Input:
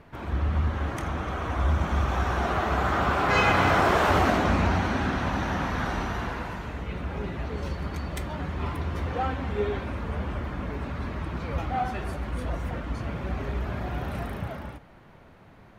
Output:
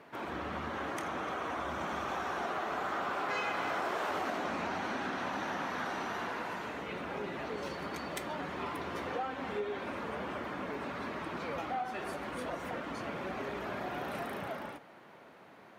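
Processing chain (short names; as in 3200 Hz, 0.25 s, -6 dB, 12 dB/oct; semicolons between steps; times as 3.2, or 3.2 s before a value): HPF 290 Hz 12 dB/oct; compressor 4:1, threshold -34 dBFS, peak gain reduction 13.5 dB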